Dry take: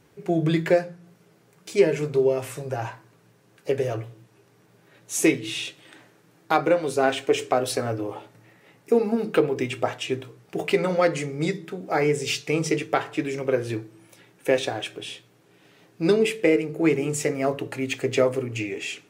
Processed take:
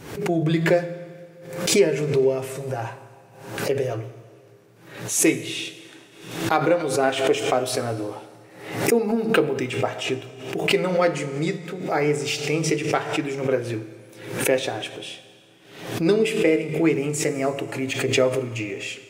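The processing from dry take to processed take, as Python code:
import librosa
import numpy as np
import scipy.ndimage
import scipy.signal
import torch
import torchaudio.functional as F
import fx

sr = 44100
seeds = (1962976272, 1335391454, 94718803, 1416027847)

y = fx.rev_schroeder(x, sr, rt60_s=1.9, comb_ms=27, drr_db=12.0)
y = fx.pre_swell(y, sr, db_per_s=79.0)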